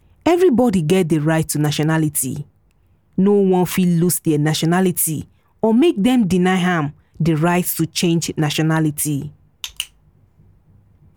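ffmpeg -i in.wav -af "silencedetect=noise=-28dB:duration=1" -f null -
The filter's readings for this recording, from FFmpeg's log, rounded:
silence_start: 9.85
silence_end: 11.17 | silence_duration: 1.32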